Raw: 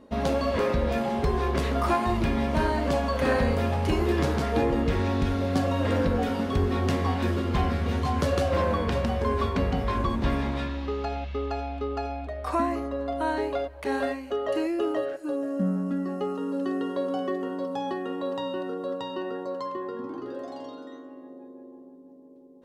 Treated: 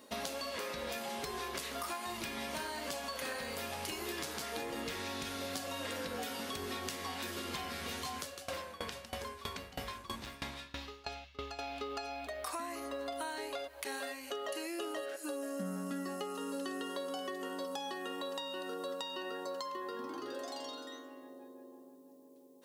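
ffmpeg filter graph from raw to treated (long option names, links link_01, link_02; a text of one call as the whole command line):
ffmpeg -i in.wav -filter_complex "[0:a]asettb=1/sr,asplit=3[link_01][link_02][link_03];[link_01]atrim=end=8.164[link_04];[link_02]atrim=start=8.16:end=11.59,asetpts=PTS-STARTPTS,afade=type=in:duration=0.004:curve=qsin,afade=type=out:start_time=3.426:duration=0.004:curve=qsin,asubboost=boost=3.5:cutoff=160,volume=14.5dB,asoftclip=hard,volume=-14.5dB,aeval=exprs='val(0)*pow(10,-24*if(lt(mod(3.1*n/s,1),2*abs(3.1)/1000),1-mod(3.1*n/s,1)/(2*abs(3.1)/1000),(mod(3.1*n/s,1)-2*abs(3.1)/1000)/(1-2*abs(3.1)/1000))/20)':channel_layout=same[link_05];[link_03]atrim=start=11.586[link_06];[link_04][link_05]acrossfade=duration=0.004:curve1=hsin:curve2=qsin[link_07];[link_07][link_06]acrossfade=duration=0.004:curve1=qsin:curve2=hsin,aderivative,acompressor=threshold=-53dB:ratio=6,lowshelf=frequency=500:gain=7.5,volume=13.5dB" out.wav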